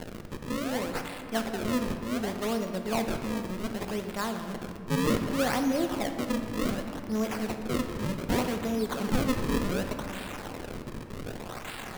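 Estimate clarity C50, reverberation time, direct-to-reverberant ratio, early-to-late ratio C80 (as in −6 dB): 6.5 dB, 2.3 s, 5.0 dB, 8.0 dB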